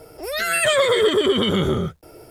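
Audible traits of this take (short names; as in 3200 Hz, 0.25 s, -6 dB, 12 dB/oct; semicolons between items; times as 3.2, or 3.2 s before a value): a quantiser's noise floor 12-bit, dither none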